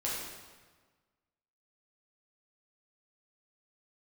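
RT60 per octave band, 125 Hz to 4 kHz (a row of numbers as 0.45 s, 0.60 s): 1.6 s, 1.5 s, 1.4 s, 1.4 s, 1.3 s, 1.1 s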